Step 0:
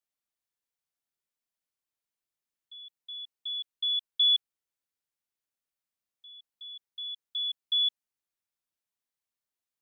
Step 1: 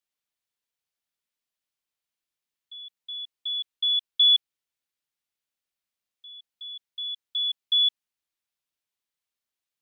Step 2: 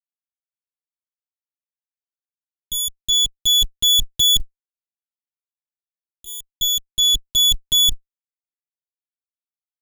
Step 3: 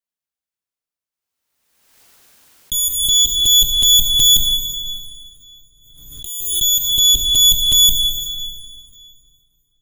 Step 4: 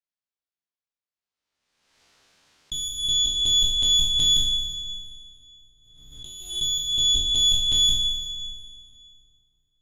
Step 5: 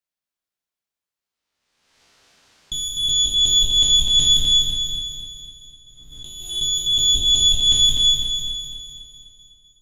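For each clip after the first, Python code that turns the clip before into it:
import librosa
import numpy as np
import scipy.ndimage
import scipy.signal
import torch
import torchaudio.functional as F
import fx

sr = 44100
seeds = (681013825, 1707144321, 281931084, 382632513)

y1 = fx.peak_eq(x, sr, hz=3200.0, db=5.0, octaves=1.6)
y2 = fx.lower_of_two(y1, sr, delay_ms=6.8)
y2 = fx.fuzz(y2, sr, gain_db=45.0, gate_db=-43.0)
y3 = fx.rev_plate(y2, sr, seeds[0], rt60_s=2.6, hf_ratio=0.8, predelay_ms=0, drr_db=2.0)
y3 = fx.pre_swell(y3, sr, db_per_s=44.0)
y3 = y3 * 10.0 ** (3.0 / 20.0)
y4 = fx.spec_trails(y3, sr, decay_s=0.79)
y4 = scipy.signal.sosfilt(scipy.signal.cheby1(2, 1.0, 4900.0, 'lowpass', fs=sr, output='sos'), y4)
y4 = y4 * 10.0 ** (-7.5 / 20.0)
y5 = fx.echo_feedback(y4, sr, ms=251, feedback_pct=51, wet_db=-4.5)
y5 = y5 * 10.0 ** (3.5 / 20.0)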